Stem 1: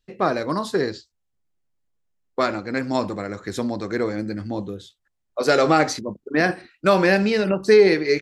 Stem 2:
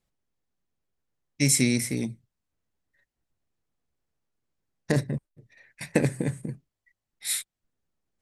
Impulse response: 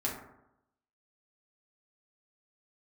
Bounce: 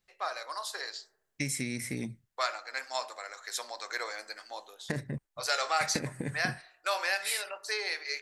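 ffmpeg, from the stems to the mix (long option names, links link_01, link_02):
-filter_complex "[0:a]highshelf=frequency=3600:gain=12,dynaudnorm=framelen=140:gausssize=13:maxgain=11.5dB,highpass=frequency=700:width=0.5412,highpass=frequency=700:width=1.3066,volume=-13dB,asplit=2[link_01][link_02];[link_02]volume=-17dB[link_03];[1:a]equalizer=frequency=1800:width=1.2:gain=6.5,acompressor=threshold=-27dB:ratio=6,volume=-3.5dB[link_04];[2:a]atrim=start_sample=2205[link_05];[link_03][link_05]afir=irnorm=-1:irlink=0[link_06];[link_01][link_04][link_06]amix=inputs=3:normalize=0"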